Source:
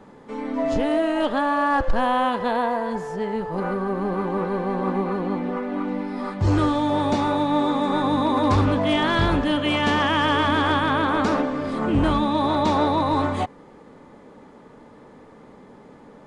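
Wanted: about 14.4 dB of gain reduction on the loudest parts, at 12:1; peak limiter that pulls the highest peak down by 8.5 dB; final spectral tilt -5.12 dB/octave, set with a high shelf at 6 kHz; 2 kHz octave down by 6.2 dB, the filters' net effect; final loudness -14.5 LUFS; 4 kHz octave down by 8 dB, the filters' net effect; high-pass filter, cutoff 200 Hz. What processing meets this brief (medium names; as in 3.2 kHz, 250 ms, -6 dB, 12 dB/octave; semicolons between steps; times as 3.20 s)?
high-pass 200 Hz; peaking EQ 2 kHz -7 dB; peaking EQ 4 kHz -9 dB; treble shelf 6 kHz +4.5 dB; compression 12:1, threshold -33 dBFS; trim +27 dB; peak limiter -5.5 dBFS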